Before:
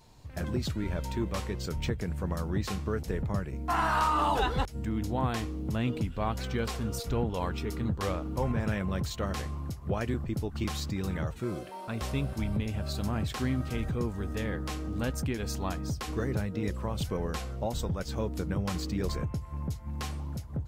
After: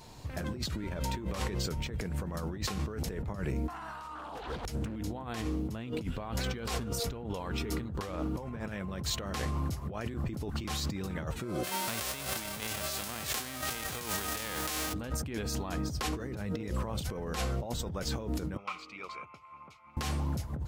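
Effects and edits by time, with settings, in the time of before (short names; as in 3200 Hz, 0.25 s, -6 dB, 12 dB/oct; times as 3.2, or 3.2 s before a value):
4.15–4.96 Doppler distortion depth 0.83 ms
11.63–14.92 spectral whitening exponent 0.3
18.57–19.97 double band-pass 1700 Hz, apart 0.9 oct
whole clip: low shelf 100 Hz -6 dB; negative-ratio compressor -39 dBFS, ratio -1; gain +3 dB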